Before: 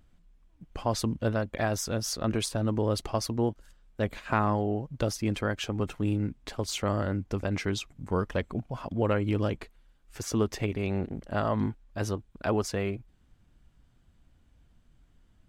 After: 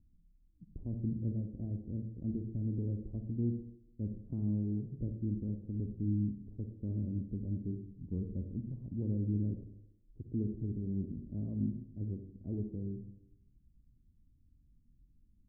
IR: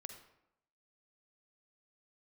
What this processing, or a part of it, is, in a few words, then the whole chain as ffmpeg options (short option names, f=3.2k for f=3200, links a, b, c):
next room: -filter_complex "[0:a]lowpass=f=290:w=0.5412,lowpass=f=290:w=1.3066[a];[1:a]atrim=start_sample=2205[b];[a][b]afir=irnorm=-1:irlink=0"